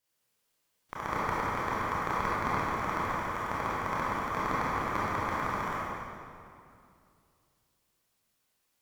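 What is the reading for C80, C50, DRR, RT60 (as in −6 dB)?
−2.5 dB, −5.0 dB, −9.0 dB, 2.4 s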